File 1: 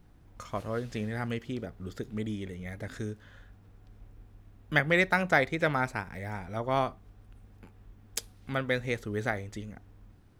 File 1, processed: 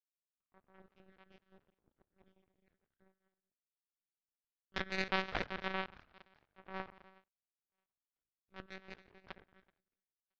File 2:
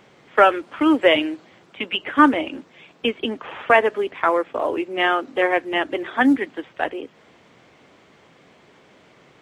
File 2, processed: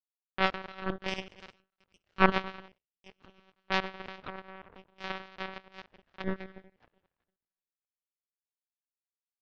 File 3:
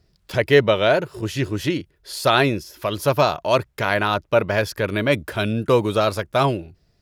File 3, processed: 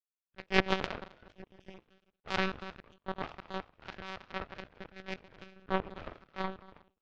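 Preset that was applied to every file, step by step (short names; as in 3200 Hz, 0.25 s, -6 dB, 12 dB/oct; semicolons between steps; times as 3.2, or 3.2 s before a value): transient shaper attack -4 dB, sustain +5 dB; bell 630 Hz -10.5 dB 0.23 oct; reverb removal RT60 0.99 s; bell 2000 Hz -5.5 dB 0.37 oct; thinning echo 1.013 s, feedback 27%, high-pass 640 Hz, level -13.5 dB; non-linear reverb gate 0.44 s flat, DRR 1 dB; monotone LPC vocoder at 8 kHz 190 Hz; LPF 2800 Hz 24 dB/oct; power-law curve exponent 3; gain -1 dB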